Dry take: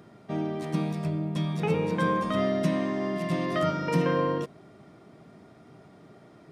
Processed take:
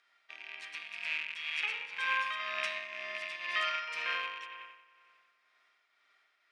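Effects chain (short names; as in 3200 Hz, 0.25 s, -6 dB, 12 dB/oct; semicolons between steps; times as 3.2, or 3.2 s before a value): rattling part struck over -31 dBFS, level -27 dBFS; tilt +2 dB/oct; in parallel at +2 dB: limiter -23.5 dBFS, peak gain reduction 10 dB; on the sum: ladder band-pass 2600 Hz, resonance 25%; on a send: analogue delay 91 ms, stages 2048, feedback 76%, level -6.5 dB; on the sum: tremolo triangle 2 Hz, depth 50%; upward expander 1.5:1, over -58 dBFS; gain +7.5 dB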